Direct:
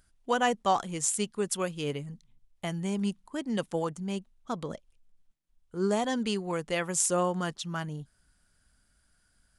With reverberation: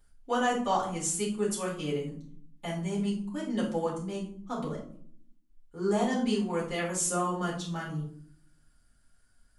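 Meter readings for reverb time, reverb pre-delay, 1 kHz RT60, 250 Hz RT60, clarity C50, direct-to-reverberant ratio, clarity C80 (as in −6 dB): 0.60 s, 3 ms, 0.50 s, 1.0 s, 6.0 dB, −7.5 dB, 10.5 dB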